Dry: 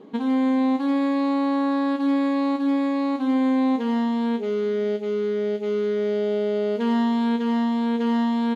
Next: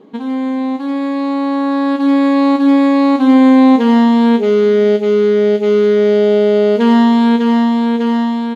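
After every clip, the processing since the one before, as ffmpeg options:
ffmpeg -i in.wav -af "dynaudnorm=framelen=830:gausssize=5:maxgain=11.5dB,volume=2.5dB" out.wav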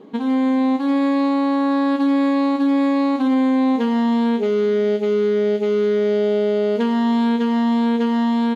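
ffmpeg -i in.wav -af "alimiter=limit=-12dB:level=0:latency=1:release=194" out.wav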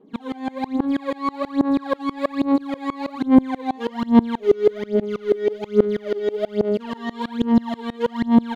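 ffmpeg -i in.wav -af "aphaser=in_gain=1:out_gain=1:delay=2.7:decay=0.78:speed=1.2:type=sinusoidal,aeval=exprs='val(0)*pow(10,-25*if(lt(mod(-6.2*n/s,1),2*abs(-6.2)/1000),1-mod(-6.2*n/s,1)/(2*abs(-6.2)/1000),(mod(-6.2*n/s,1)-2*abs(-6.2)/1000)/(1-2*abs(-6.2)/1000))/20)':channel_layout=same,volume=-1dB" out.wav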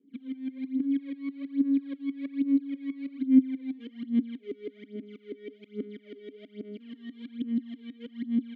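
ffmpeg -i in.wav -filter_complex "[0:a]asplit=3[link_01][link_02][link_03];[link_01]bandpass=frequency=270:width_type=q:width=8,volume=0dB[link_04];[link_02]bandpass=frequency=2290:width_type=q:width=8,volume=-6dB[link_05];[link_03]bandpass=frequency=3010:width_type=q:width=8,volume=-9dB[link_06];[link_04][link_05][link_06]amix=inputs=3:normalize=0,volume=-4.5dB" out.wav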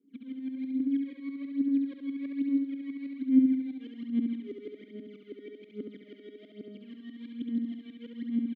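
ffmpeg -i in.wav -af "aecho=1:1:69|138|207|276|345|414|483:0.596|0.304|0.155|0.079|0.0403|0.0206|0.0105,volume=-4dB" out.wav

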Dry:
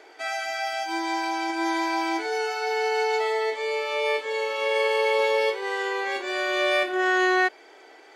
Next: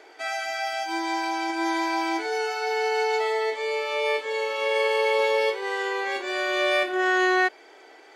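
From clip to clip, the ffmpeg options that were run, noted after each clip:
ffmpeg -i in.wav -af anull out.wav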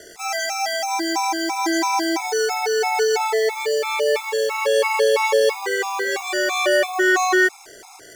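ffmpeg -i in.wav -af "acrusher=bits=7:mix=0:aa=0.5,highshelf=frequency=4700:width_type=q:width=1.5:gain=8,afftfilt=real='re*gt(sin(2*PI*3*pts/sr)*(1-2*mod(floor(b*sr/1024/690),2)),0)':imag='im*gt(sin(2*PI*3*pts/sr)*(1-2*mod(floor(b*sr/1024/690),2)),0)':win_size=1024:overlap=0.75,volume=8dB" out.wav

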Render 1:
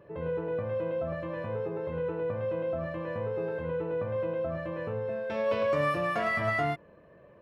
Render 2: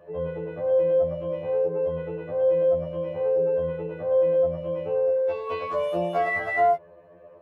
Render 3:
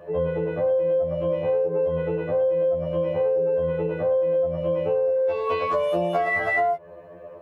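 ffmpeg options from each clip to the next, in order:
ffmpeg -i in.wav -af "equalizer=frequency=640:width_type=o:width=1.2:gain=11.5,afftfilt=real='re*2*eq(mod(b,4),0)':imag='im*2*eq(mod(b,4),0)':win_size=2048:overlap=0.75" out.wav
ffmpeg -i in.wav -af "acompressor=threshold=-27dB:ratio=10,volume=7.5dB" out.wav

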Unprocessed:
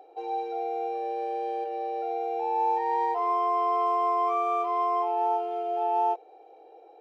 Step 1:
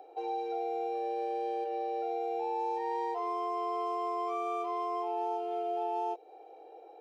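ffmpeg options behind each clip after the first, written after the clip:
ffmpeg -i in.wav -filter_complex "[0:a]acrossover=split=440|3000[link_01][link_02][link_03];[link_02]acompressor=threshold=-35dB:ratio=6[link_04];[link_01][link_04][link_03]amix=inputs=3:normalize=0" out.wav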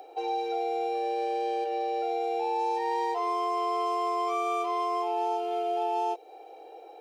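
ffmpeg -i in.wav -af "highshelf=frequency=2000:gain=10,volume=3.5dB" out.wav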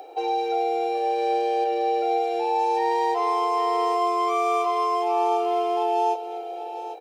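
ffmpeg -i in.wav -af "aecho=1:1:250|801:0.133|0.282,volume=5.5dB" out.wav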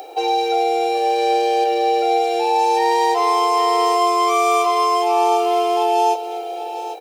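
ffmpeg -i in.wav -af "highshelf=frequency=3400:gain=11.5,volume=5.5dB" out.wav

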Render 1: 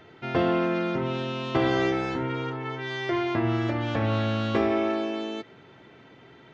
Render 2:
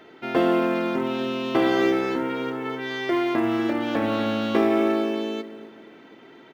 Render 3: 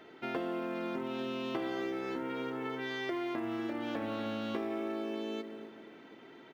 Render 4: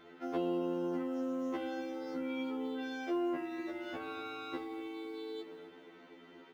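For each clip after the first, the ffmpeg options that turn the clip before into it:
ffmpeg -i in.wav -filter_complex "[0:a]lowshelf=frequency=170:width_type=q:width=1.5:gain=-11.5,asplit=2[link_01][link_02];[link_02]adelay=245,lowpass=frequency=1300:poles=1,volume=-12dB,asplit=2[link_03][link_04];[link_04]adelay=245,lowpass=frequency=1300:poles=1,volume=0.39,asplit=2[link_05][link_06];[link_06]adelay=245,lowpass=frequency=1300:poles=1,volume=0.39,asplit=2[link_07][link_08];[link_08]adelay=245,lowpass=frequency=1300:poles=1,volume=0.39[link_09];[link_01][link_03][link_05][link_07][link_09]amix=inputs=5:normalize=0,asplit=2[link_10][link_11];[link_11]acrusher=bits=5:mode=log:mix=0:aa=0.000001,volume=-11.5dB[link_12];[link_10][link_12]amix=inputs=2:normalize=0" out.wav
ffmpeg -i in.wav -af "acompressor=threshold=-28dB:ratio=6,volume=-5.5dB" out.wav
ffmpeg -i in.wav -af "afftfilt=real='re*2*eq(mod(b,4),0)':imag='im*2*eq(mod(b,4),0)':win_size=2048:overlap=0.75" out.wav

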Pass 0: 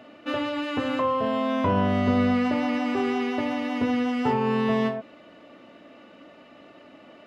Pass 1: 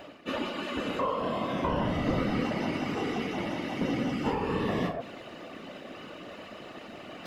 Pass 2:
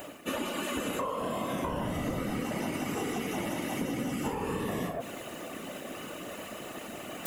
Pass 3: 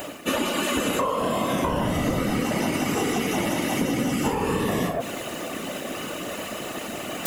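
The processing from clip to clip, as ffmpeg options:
ffmpeg -i in.wav -af "highshelf=frequency=4500:gain=10,areverse,acompressor=mode=upward:threshold=-26dB:ratio=2.5,areverse,afftfilt=real='hypot(re,im)*cos(2*PI*random(0))':imag='hypot(re,im)*sin(2*PI*random(1))':win_size=512:overlap=0.75" out.wav
ffmpeg -i in.wav -af "acompressor=threshold=-32dB:ratio=6,aexciter=amount=10.1:drive=3.5:freq=6800,volume=2.5dB" out.wav
ffmpeg -i in.wav -af "equalizer=frequency=4900:width=1.1:gain=3.5,volume=8.5dB" out.wav

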